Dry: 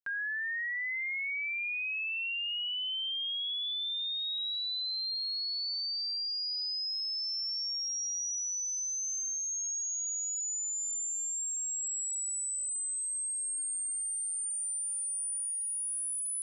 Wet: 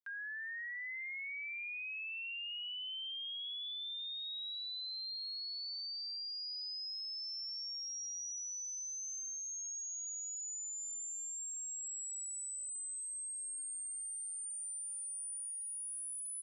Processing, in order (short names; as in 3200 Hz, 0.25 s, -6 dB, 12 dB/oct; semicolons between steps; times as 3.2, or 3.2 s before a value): HPF 1100 Hz; on a send: frequency-shifting echo 0.169 s, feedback 47%, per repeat -47 Hz, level -22 dB; on the sum: gain -8 dB